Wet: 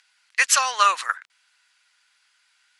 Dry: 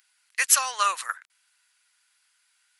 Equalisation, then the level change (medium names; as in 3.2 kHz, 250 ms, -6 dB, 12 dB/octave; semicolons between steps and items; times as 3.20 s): low-pass 6 kHz 12 dB/octave; +6.0 dB